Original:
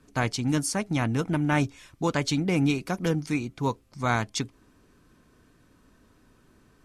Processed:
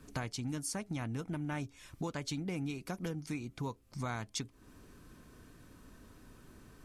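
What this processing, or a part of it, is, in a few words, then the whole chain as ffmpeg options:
ASMR close-microphone chain: -af "lowshelf=frequency=130:gain=4,acompressor=threshold=-40dB:ratio=4,highshelf=frequency=9800:gain=7.5,volume=1.5dB"

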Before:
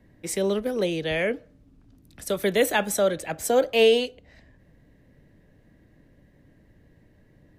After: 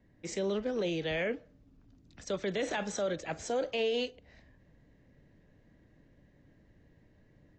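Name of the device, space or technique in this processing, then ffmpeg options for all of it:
low-bitrate web radio: -af "dynaudnorm=framelen=140:gausssize=3:maxgain=3dB,alimiter=limit=-15.5dB:level=0:latency=1:release=18,volume=-8.5dB" -ar 16000 -c:a aac -b:a 32k

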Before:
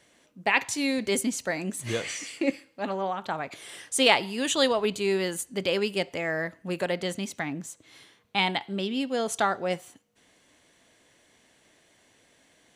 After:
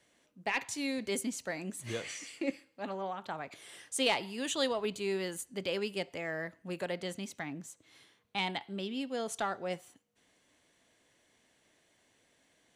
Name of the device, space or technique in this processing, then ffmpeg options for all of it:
one-band saturation: -filter_complex "[0:a]acrossover=split=580|2900[link_01][link_02][link_03];[link_02]asoftclip=type=tanh:threshold=-18.5dB[link_04];[link_01][link_04][link_03]amix=inputs=3:normalize=0,volume=-8dB"

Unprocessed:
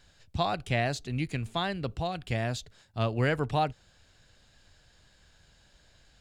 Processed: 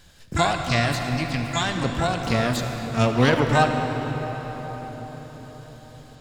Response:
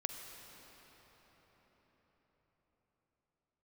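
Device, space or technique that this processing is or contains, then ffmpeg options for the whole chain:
shimmer-style reverb: -filter_complex "[0:a]asettb=1/sr,asplit=3[link_01][link_02][link_03];[link_01]atrim=end=0.524[link_04];[link_02]atrim=start=0.52:end=1.75,asetpts=PTS-STARTPTS,afade=type=in:duration=0.004:curve=qsin,afade=type=out:start_time=1.226:duration=0.004:curve=qsin,equalizer=frequency=250:width_type=o:width=1:gain=-8,equalizer=frequency=500:width_type=o:width=1:gain=-6,equalizer=frequency=8000:width_type=o:width=1:gain=-6[link_05];[link_03]atrim=start=1.746[link_06];[link_04][link_05]acrossfade=duration=0.004:curve1=hsin:curve2=qsin[link_07];[link_07][link_06]acrossfade=duration=0.004:curve1=qsin:curve2=hsin,asplit=2[link_08][link_09];[link_09]asetrate=88200,aresample=44100,atempo=0.5,volume=-6dB[link_10];[link_08][link_10]amix=inputs=2:normalize=0[link_11];[1:a]atrim=start_sample=2205[link_12];[link_11][link_12]afir=irnorm=-1:irlink=0,volume=8dB"

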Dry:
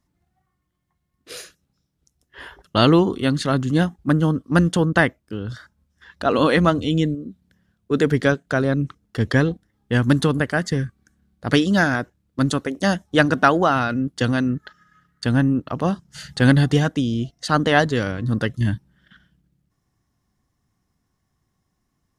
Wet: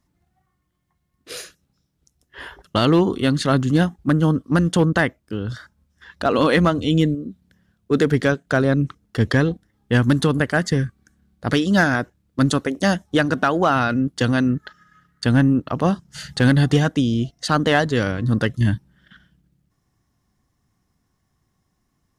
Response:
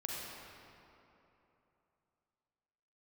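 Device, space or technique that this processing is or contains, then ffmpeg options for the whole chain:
limiter into clipper: -af "alimiter=limit=-8.5dB:level=0:latency=1:release=242,asoftclip=type=hard:threshold=-10.5dB,volume=2.5dB"

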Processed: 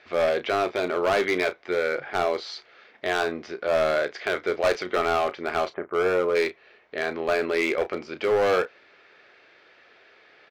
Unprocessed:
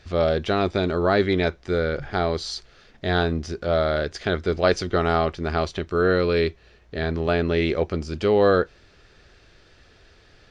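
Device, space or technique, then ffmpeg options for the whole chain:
megaphone: -filter_complex "[0:a]asplit=3[link_01][link_02][link_03];[link_01]afade=type=out:start_time=5.69:duration=0.02[link_04];[link_02]lowpass=frequency=1500:width=0.5412,lowpass=frequency=1500:width=1.3066,afade=type=in:start_time=5.69:duration=0.02,afade=type=out:start_time=6.34:duration=0.02[link_05];[link_03]afade=type=in:start_time=6.34:duration=0.02[link_06];[link_04][link_05][link_06]amix=inputs=3:normalize=0,highpass=460,lowpass=2900,equalizer=frequency=2200:width_type=o:width=0.24:gain=7,asoftclip=type=hard:threshold=-20dB,asplit=2[link_07][link_08];[link_08]adelay=33,volume=-12dB[link_09];[link_07][link_09]amix=inputs=2:normalize=0,volume=2.5dB"

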